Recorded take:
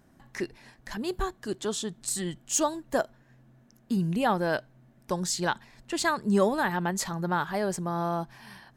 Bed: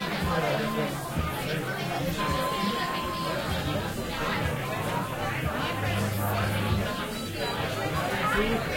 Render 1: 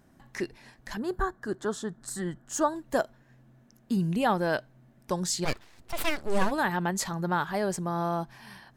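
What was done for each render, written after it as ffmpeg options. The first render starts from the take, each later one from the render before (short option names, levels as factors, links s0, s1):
-filter_complex "[0:a]asettb=1/sr,asplit=3[s0][s1][s2];[s0]atrim=end=0.994[s3];[s1]atrim=start=0.99:end=2.76,asetpts=PTS-STARTPTS,afade=t=in:d=0.004:c=qsin,afade=t=out:st=1.766:d=0.004:c=qsin,highshelf=f=2000:t=q:w=3:g=-7[s4];[s2]atrim=start=2.756[s5];[s3][s4]acrossfade=d=0.004:c1=hsin:c2=qsin[s6];[s6][s5]acrossfade=d=0.004:c1=qsin:c2=hsin,asplit=3[s7][s8][s9];[s7]afade=t=out:st=5.44:d=0.02[s10];[s8]aeval=exprs='abs(val(0))':c=same,afade=t=in:st=5.44:d=0.02,afade=t=out:st=6.5:d=0.02[s11];[s9]afade=t=in:st=6.5:d=0.02[s12];[s10][s11][s12]amix=inputs=3:normalize=0"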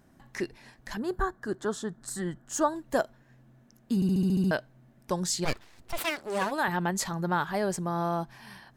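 -filter_complex "[0:a]asettb=1/sr,asplit=3[s0][s1][s2];[s0]atrim=end=5.984[s3];[s1]atrim=start=5.98:end=6.68,asetpts=PTS-STARTPTS,afade=t=in:d=0.004:c=qsin,afade=t=out:st=0.696:d=0.004:c=qsin,highpass=f=350:p=1[s4];[s2]atrim=start=6.676[s5];[s3][s4]acrossfade=d=0.004:c1=hsin:c2=qsin[s6];[s6][s5]acrossfade=d=0.004:c1=qsin:c2=hsin,asplit=9[s7][s8][s9][s10][s11][s12][s13][s14][s15];[s7]atrim=end=4.022[s16];[s8]atrim=start=3.948:end=4.022[s17];[s9]atrim=start=3.948:end=4.022[s18];[s10]atrim=start=3.948:end=4.022[s19];[s11]atrim=start=3.948:end=4.022[s20];[s12]atrim=start=3.948:end=4.022[s21];[s13]atrim=start=3.948:end=4.022[s22];[s14]atrim=start=3.948:end=4.022[s23];[s15]atrim=start=4.508[s24];[s16][s17]acrossfade=d=0.004:c1=hsin:c2=hsin[s25];[s25][s18]acrossfade=d=0.004:c1=hsin:c2=hsin[s26];[s26][s19]acrossfade=d=0.004:c1=hsin:c2=hsin[s27];[s27][s20]acrossfade=d=0.004:c1=hsin:c2=hsin[s28];[s28][s21]acrossfade=d=0.004:c1=hsin:c2=hsin[s29];[s29][s22]acrossfade=d=0.004:c1=hsin:c2=hsin[s30];[s30][s23]acrossfade=d=0.004:c1=hsin:c2=hsin[s31];[s31][s24]acrossfade=d=0.004:c1=hsin:c2=hsin"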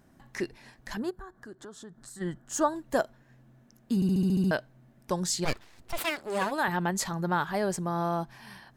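-filter_complex "[0:a]asplit=3[s0][s1][s2];[s0]afade=t=out:st=1.09:d=0.02[s3];[s1]acompressor=threshold=0.00501:ratio=3:attack=3.2:release=140:knee=1:detection=peak,afade=t=in:st=1.09:d=0.02,afade=t=out:st=2.2:d=0.02[s4];[s2]afade=t=in:st=2.2:d=0.02[s5];[s3][s4][s5]amix=inputs=3:normalize=0,asettb=1/sr,asplit=3[s6][s7][s8];[s6]atrim=end=6.034[s9];[s7]atrim=start=6.03:end=6.52,asetpts=PTS-STARTPTS,afade=t=in:d=0.004:c=qsin,afade=t=out:st=0.486:d=0.004:c=qsin,bandreject=f=5800:w=9.6[s10];[s8]atrim=start=6.516[s11];[s9][s10]acrossfade=d=0.004:c1=hsin:c2=qsin[s12];[s12][s11]acrossfade=d=0.004:c1=qsin:c2=hsin"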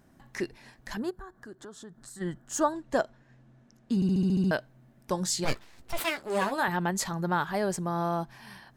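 -filter_complex "[0:a]asettb=1/sr,asplit=3[s0][s1][s2];[s0]atrim=end=2.724[s3];[s1]atrim=start=2.72:end=4.51,asetpts=PTS-STARTPTS,afade=t=in:d=0.004:c=qsin,afade=t=out:st=1.786:d=0.004:c=qsin,lowpass=7500[s4];[s2]atrim=start=4.506[s5];[s3][s4]acrossfade=d=0.004:c1=hsin:c2=qsin[s6];[s6][s5]acrossfade=d=0.004:c1=qsin:c2=hsin,asettb=1/sr,asplit=3[s7][s8][s9];[s7]atrim=end=5.134[s10];[s8]atrim=start=5.13:end=6.66,asetpts=PTS-STARTPTS,afade=t=in:d=0.004:c=qsin,afade=t=out:st=1.526:d=0.004:c=qsin,asplit=2[s11][s12];[s12]adelay=15,volume=0.355[s13];[s11][s13]amix=inputs=2:normalize=0,atrim=end_sample=67473[s14];[s9]atrim=start=6.656[s15];[s10][s14]acrossfade=d=0.004:c1=hsin:c2=qsin[s16];[s16][s15]acrossfade=d=0.004:c1=qsin:c2=hsin"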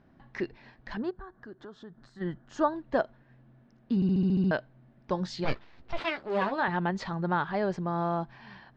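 -af "lowpass=f=4700:w=0.5412,lowpass=f=4700:w=1.3066,aemphasis=mode=reproduction:type=50kf"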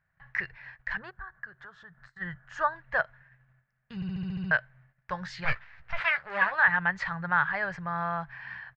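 -af "agate=range=0.178:threshold=0.00158:ratio=16:detection=peak,firequalizer=gain_entry='entry(150,0);entry(260,-27);entry(500,-8);entry(1700,13);entry(3500,-4)':delay=0.05:min_phase=1"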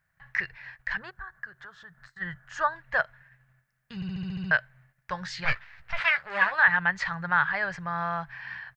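-af "highshelf=f=3100:g=9.5"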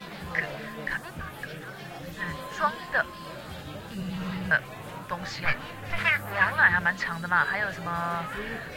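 -filter_complex "[1:a]volume=0.299[s0];[0:a][s0]amix=inputs=2:normalize=0"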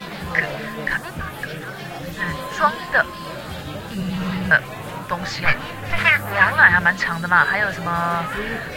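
-af "volume=2.66,alimiter=limit=0.891:level=0:latency=1"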